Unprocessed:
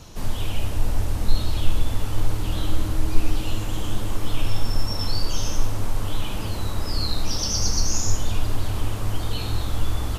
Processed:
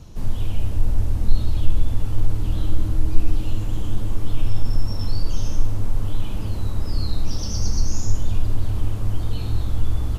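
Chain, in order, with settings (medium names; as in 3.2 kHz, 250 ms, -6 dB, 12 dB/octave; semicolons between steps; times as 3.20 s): bass shelf 380 Hz +12 dB; in parallel at -10 dB: saturation -1 dBFS, distortion -13 dB; on the sum: trim -10.5 dB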